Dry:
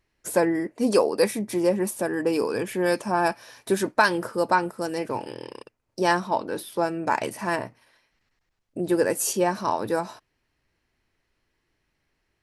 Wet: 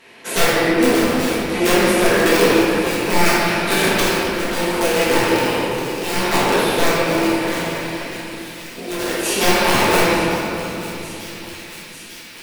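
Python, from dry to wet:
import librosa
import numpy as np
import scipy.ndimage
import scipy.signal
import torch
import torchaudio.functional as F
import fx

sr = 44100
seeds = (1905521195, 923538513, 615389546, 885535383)

y = fx.bin_compress(x, sr, power=0.6)
y = fx.highpass(y, sr, hz=190.0, slope=6)
y = fx.band_shelf(y, sr, hz=2800.0, db=10.0, octaves=1.1)
y = (np.mod(10.0 ** (12.0 / 20.0) * y + 1.0, 2.0) - 1.0) / 10.0 ** (12.0 / 20.0)
y = fx.chopper(y, sr, hz=0.65, depth_pct=65, duty_pct=60)
y = fx.echo_wet_highpass(y, sr, ms=896, feedback_pct=78, hz=2500.0, wet_db=-13.0)
y = fx.room_shoebox(y, sr, seeds[0], volume_m3=200.0, walls='hard', distance_m=1.6)
y = y * librosa.db_to_amplitude(-4.0)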